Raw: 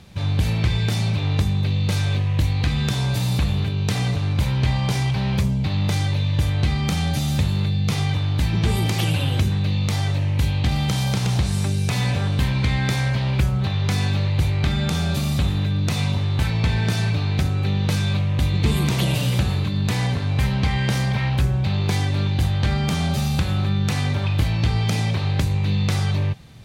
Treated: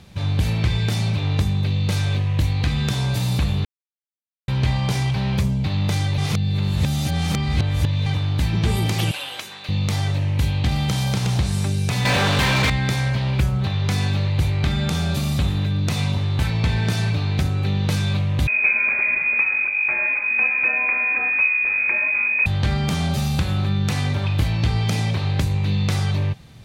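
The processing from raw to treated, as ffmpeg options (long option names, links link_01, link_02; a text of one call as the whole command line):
ffmpeg -i in.wav -filter_complex "[0:a]asettb=1/sr,asplit=3[link_01][link_02][link_03];[link_01]atrim=end=9.114[link_04];[link_02]atrim=start=9.11:end=9.69,asetpts=PTS-STARTPTS,afade=type=in:duration=0.004:curve=qsin,afade=type=out:start_time=0.576:duration=0.004:curve=qsin,highpass=790[link_05];[link_03]atrim=start=9.686[link_06];[link_04][link_05]acrossfade=duration=0.004:curve1=hsin:curve2=qsin[link_07];[link_07][link_06]acrossfade=duration=0.004:curve1=qsin:curve2=hsin,asettb=1/sr,asplit=3[link_08][link_09][link_10];[link_08]atrim=end=12.054[link_11];[link_09]atrim=start=12.05:end=12.7,asetpts=PTS-STARTPTS,afade=type=in:duration=0.004:curve=qsin,afade=type=out:start_time=0.646:duration=0.004:curve=qsin,asplit=2[link_12][link_13];[link_13]highpass=frequency=720:poles=1,volume=30dB,asoftclip=type=tanh:threshold=-11dB[link_14];[link_12][link_14]amix=inputs=2:normalize=0,lowpass=frequency=3400:poles=1,volume=-6dB[link_15];[link_10]atrim=start=12.696[link_16];[link_11][link_15]acrossfade=duration=0.004:curve1=hsin:curve2=qsin[link_17];[link_17][link_16]acrossfade=duration=0.004:curve1=qsin:curve2=hsin,asettb=1/sr,asplit=3[link_18][link_19][link_20];[link_18]atrim=end=18.474[link_21];[link_19]atrim=start=18.47:end=22.46,asetpts=PTS-STARTPTS,afade=type=in:duration=0.004:curve=qsin,afade=type=out:start_time=3.986:duration=0.004:curve=qsin,lowpass=frequency=2200:width_type=q:width=0.5098,lowpass=frequency=2200:width_type=q:width=0.6013,lowpass=frequency=2200:width_type=q:width=0.9,lowpass=frequency=2200:width_type=q:width=2.563,afreqshift=-2600[link_22];[link_20]atrim=start=22.456[link_23];[link_21][link_22]acrossfade=duration=0.004:curve1=hsin:curve2=qsin[link_24];[link_24][link_23]acrossfade=duration=0.004:curve1=qsin:curve2=hsin,asplit=5[link_25][link_26][link_27][link_28][link_29];[link_25]atrim=end=3.65,asetpts=PTS-STARTPTS,afade=type=out:start_time=3.646:duration=0.004:curve=hsin[link_30];[link_26]atrim=start=3.65:end=4.48,asetpts=PTS-STARTPTS,volume=0[link_31];[link_27]atrim=start=4.48:end=6.182,asetpts=PTS-STARTPTS,afade=type=in:duration=0.004:curve=hsin[link_32];[link_28]atrim=start=6.178:end=8.062,asetpts=PTS-STARTPTS,areverse[link_33];[link_29]atrim=start=8.058[link_34];[link_30][link_31][link_32]concat=n=3:v=0:a=1[link_35];[link_35][link_33]acrossfade=duration=0.004:curve1=hsin:curve2=hsin[link_36];[link_36][link_34]acrossfade=duration=0.004:curve1=hsin:curve2=hsin" out.wav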